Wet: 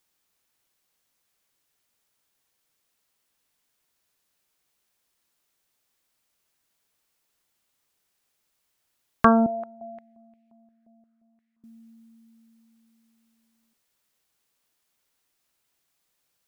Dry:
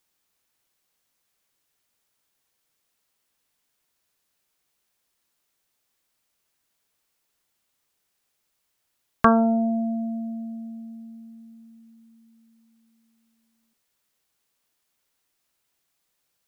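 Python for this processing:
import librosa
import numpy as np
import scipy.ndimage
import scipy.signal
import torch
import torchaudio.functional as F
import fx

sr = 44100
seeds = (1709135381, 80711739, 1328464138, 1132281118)

y = fx.filter_held_bandpass(x, sr, hz=5.7, low_hz=630.0, high_hz=2400.0, at=(9.46, 11.64))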